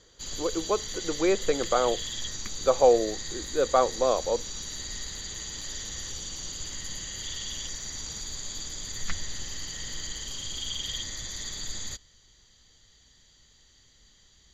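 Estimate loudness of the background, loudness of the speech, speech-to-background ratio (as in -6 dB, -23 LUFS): -34.5 LUFS, -26.5 LUFS, 8.0 dB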